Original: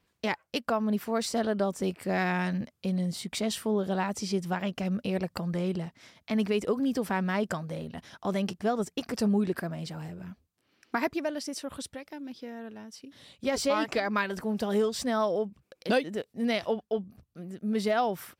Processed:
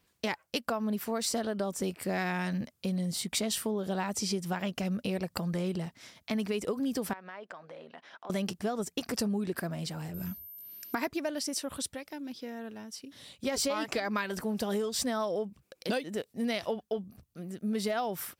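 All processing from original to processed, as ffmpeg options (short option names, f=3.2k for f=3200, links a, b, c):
-filter_complex "[0:a]asettb=1/sr,asplit=3[a][b][c];[a]atrim=end=7.134[d];[b]atrim=start=7.13:end=8.3,asetpts=PTS-STARTPTS,afade=t=in:d=0.004:c=qsin,afade=t=out:st=1.166:d=0.004:c=qsin,highpass=490,lowpass=2.5k,acompressor=threshold=-44dB:ratio=3:attack=3.2:release=140:knee=1:detection=peak[e];[c]atrim=start=8.296[f];[d][e]acrossfade=d=0.004:c1=hsin:c2=qsin[g];[g][f]acrossfade=d=0.004:c1=qsin:c2=hsin,asettb=1/sr,asplit=3[h][i][j];[h]atrim=end=10.144[k];[i]atrim=start=10.14:end=10.95,asetpts=PTS-STARTPTS,afade=t=in:d=0.004:c=qsin,afade=t=out:st=0.806:d=0.004:c=qsin,bass=f=250:g=6,treble=f=4k:g=12,aeval=exprs='val(0)+0.00251*sin(2*PI*13000*n/s)':c=same[l];[j]atrim=start=10.946[m];[k][l]acrossfade=d=0.004:c1=hsin:c2=qsin[n];[n][m]acrossfade=d=0.004:c1=qsin:c2=hsin,acompressor=threshold=-28dB:ratio=6,highshelf=f=5.3k:g=8.5"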